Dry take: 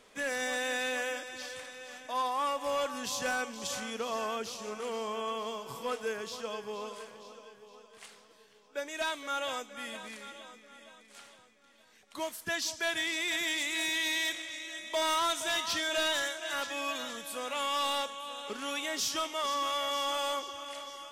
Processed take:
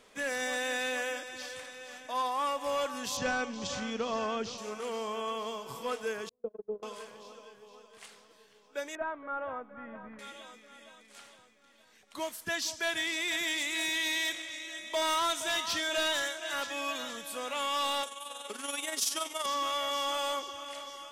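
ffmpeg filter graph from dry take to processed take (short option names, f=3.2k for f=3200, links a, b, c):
-filter_complex "[0:a]asettb=1/sr,asplit=3[a][b][c];[a]atrim=end=3.174[d];[b]atrim=start=3.17:end=4.58,asetpts=PTS-STARTPTS,afade=t=in:d=0.004:c=qsin,afade=t=out:st=1.406:d=0.004:c=qsin,lowpass=f=6.5k:w=0.5412,lowpass=f=6.5k:w=1.3066,lowshelf=f=240:g=10.5[e];[c]atrim=start=4.576[f];[d][e]acrossfade=d=0.004:c1=hsin:c2=qsin[g];[g][f]acrossfade=d=0.004:c1=qsin:c2=hsin,asettb=1/sr,asplit=3[h][i][j];[h]atrim=end=6.294[k];[i]atrim=start=6.29:end=6.83,asetpts=PTS-STARTPTS,afade=t=in:d=0.004:c=qsin,afade=t=out:st=0.536:d=0.004:c=qsin,lowpass=f=430:t=q:w=1.8,lowshelf=f=99:g=6.5,agate=range=-36dB:threshold=-35dB:ratio=16:release=100:detection=peak[l];[j]atrim=start=6.826[m];[k][l]acrossfade=d=0.004:c1=hsin:c2=qsin[n];[n][m]acrossfade=d=0.004:c1=qsin:c2=hsin,asettb=1/sr,asplit=3[o][p][q];[o]atrim=end=8.954[r];[p]atrim=start=8.95:end=10.19,asetpts=PTS-STARTPTS,afade=t=in:d=0.004:c=qsin,afade=t=out:st=1.236:d=0.004:c=qsin,asubboost=boost=9:cutoff=170,lowpass=f=1.5k:w=0.5412,lowpass=f=1.5k:w=1.3066[s];[q]atrim=start=10.186[t];[r][s]acrossfade=d=0.004:c1=hsin:c2=qsin[u];[u][t]acrossfade=d=0.004:c1=qsin:c2=hsin,asettb=1/sr,asplit=3[v][w][x];[v]atrim=end=18.034[y];[w]atrim=start=18.03:end=19.46,asetpts=PTS-STARTPTS,afade=t=in:d=0.004:c=qsin,afade=t=out:st=1.426:d=0.004:c=qsin,highpass=240,equalizer=f=10k:t=o:w=0.72:g=14.5,tremolo=f=21:d=0.571[z];[x]atrim=start=19.456[aa];[y][z]acrossfade=d=0.004:c1=hsin:c2=qsin[ab];[ab][aa]acrossfade=d=0.004:c1=qsin:c2=hsin"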